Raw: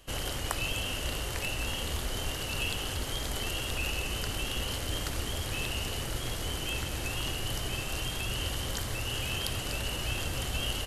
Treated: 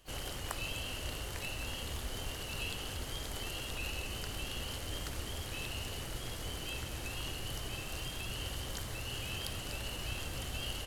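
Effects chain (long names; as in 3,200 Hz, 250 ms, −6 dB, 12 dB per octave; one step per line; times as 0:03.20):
spring reverb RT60 2.2 s, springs 54 ms, chirp 50 ms, DRR 16 dB
pitch-shifted copies added +7 semitones −13 dB
level −7 dB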